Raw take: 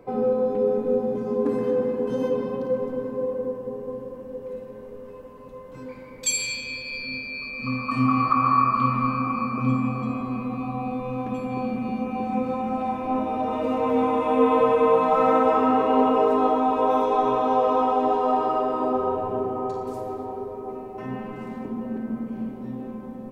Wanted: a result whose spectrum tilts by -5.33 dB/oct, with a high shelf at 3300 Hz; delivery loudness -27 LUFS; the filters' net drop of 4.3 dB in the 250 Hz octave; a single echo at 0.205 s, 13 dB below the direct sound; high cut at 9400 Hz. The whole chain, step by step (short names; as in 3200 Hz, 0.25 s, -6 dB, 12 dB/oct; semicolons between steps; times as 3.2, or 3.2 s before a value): LPF 9400 Hz; bell 250 Hz -4.5 dB; high shelf 3300 Hz -3.5 dB; echo 0.205 s -13 dB; gain -2 dB